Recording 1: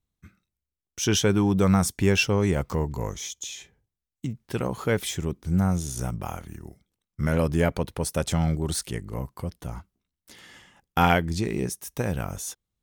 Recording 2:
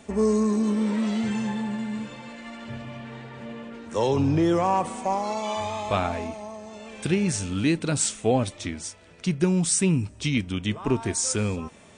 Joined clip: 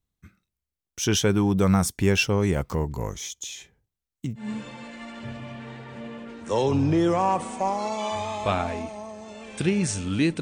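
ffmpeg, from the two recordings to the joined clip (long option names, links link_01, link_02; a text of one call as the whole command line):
ffmpeg -i cue0.wav -i cue1.wav -filter_complex "[0:a]apad=whole_dur=10.41,atrim=end=10.41,atrim=end=4.49,asetpts=PTS-STARTPTS[link_01];[1:a]atrim=start=1.8:end=7.86,asetpts=PTS-STARTPTS[link_02];[link_01][link_02]acrossfade=duration=0.14:curve1=tri:curve2=tri" out.wav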